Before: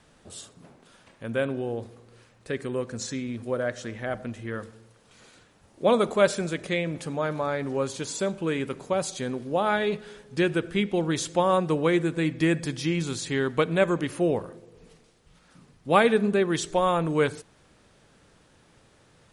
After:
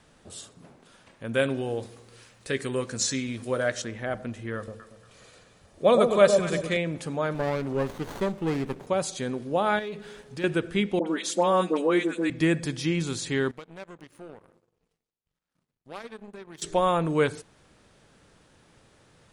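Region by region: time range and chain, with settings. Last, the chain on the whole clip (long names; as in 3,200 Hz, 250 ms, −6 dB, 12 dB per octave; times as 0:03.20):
0:01.34–0:03.82: high-shelf EQ 2,000 Hz +9.5 dB + double-tracking delay 15 ms −11.5 dB
0:04.56–0:06.77: comb filter 1.7 ms, depth 31% + delay that swaps between a low-pass and a high-pass 117 ms, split 870 Hz, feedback 53%, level −4 dB
0:07.34–0:08.87: high-pass filter 52 Hz + windowed peak hold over 17 samples
0:09.79–0:10.44: mains-hum notches 50/100/150/200/250/300/350/400/450/500 Hz + leveller curve on the samples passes 1 + downward compressor 2 to 1, threshold −41 dBFS
0:10.99–0:12.30: Butterworth high-pass 180 Hz 96 dB per octave + all-pass dispersion highs, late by 78 ms, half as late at 1,300 Hz
0:13.51–0:16.62: downward compressor 2.5 to 1, threshold −39 dBFS + power curve on the samples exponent 2
whole clip: no processing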